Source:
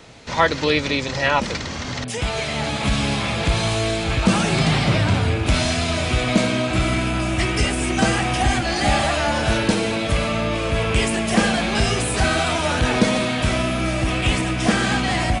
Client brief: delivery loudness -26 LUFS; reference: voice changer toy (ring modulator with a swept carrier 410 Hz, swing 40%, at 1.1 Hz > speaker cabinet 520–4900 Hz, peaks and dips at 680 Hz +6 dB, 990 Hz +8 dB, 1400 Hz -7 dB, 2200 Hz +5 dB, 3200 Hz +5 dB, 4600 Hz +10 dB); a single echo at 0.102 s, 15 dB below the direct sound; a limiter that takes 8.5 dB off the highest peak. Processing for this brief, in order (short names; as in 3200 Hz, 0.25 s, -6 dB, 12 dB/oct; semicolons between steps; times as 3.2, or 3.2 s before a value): limiter -11 dBFS; echo 0.102 s -15 dB; ring modulator with a swept carrier 410 Hz, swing 40%, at 1.1 Hz; speaker cabinet 520–4900 Hz, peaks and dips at 680 Hz +6 dB, 990 Hz +8 dB, 1400 Hz -7 dB, 2200 Hz +5 dB, 3200 Hz +5 dB, 4600 Hz +10 dB; gain -4 dB